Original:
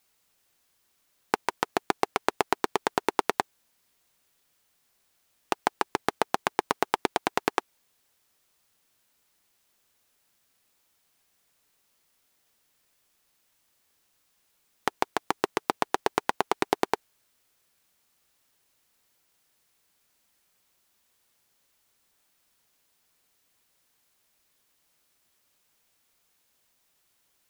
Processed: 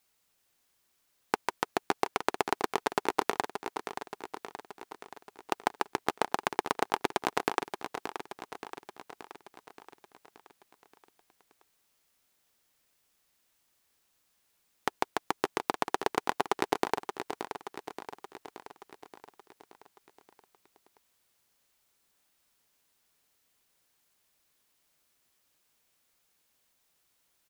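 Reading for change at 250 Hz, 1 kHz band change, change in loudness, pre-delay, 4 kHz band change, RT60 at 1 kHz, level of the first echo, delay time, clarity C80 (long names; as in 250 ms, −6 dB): −3.0 dB, −2.5 dB, −4.0 dB, no reverb audible, −2.5 dB, no reverb audible, −9.0 dB, 576 ms, no reverb audible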